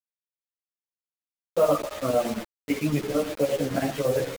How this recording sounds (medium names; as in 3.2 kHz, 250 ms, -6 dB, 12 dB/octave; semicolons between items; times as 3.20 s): chopped level 8.9 Hz, depth 65%, duty 70%; a quantiser's noise floor 6-bit, dither none; a shimmering, thickened sound